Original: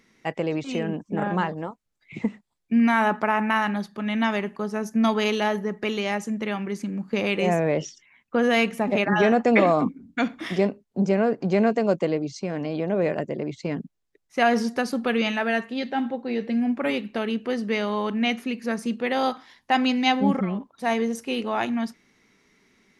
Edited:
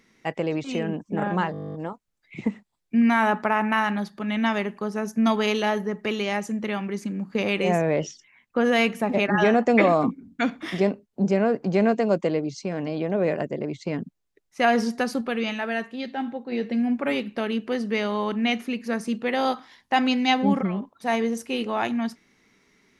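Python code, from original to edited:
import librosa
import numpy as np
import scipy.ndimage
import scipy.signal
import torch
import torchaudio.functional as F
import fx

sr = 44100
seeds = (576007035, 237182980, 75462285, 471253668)

y = fx.edit(x, sr, fx.stutter(start_s=1.52, slice_s=0.02, count=12),
    fx.clip_gain(start_s=14.99, length_s=1.31, db=-3.5), tone=tone)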